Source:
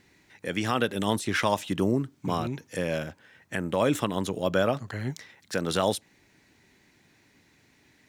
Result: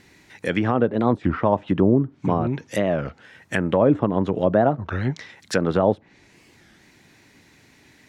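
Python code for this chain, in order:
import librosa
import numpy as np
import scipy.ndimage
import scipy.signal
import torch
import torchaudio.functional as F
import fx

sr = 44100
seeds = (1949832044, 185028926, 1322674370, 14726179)

y = fx.env_lowpass_down(x, sr, base_hz=820.0, full_db=-23.0)
y = fx.record_warp(y, sr, rpm=33.33, depth_cents=250.0)
y = y * 10.0 ** (8.0 / 20.0)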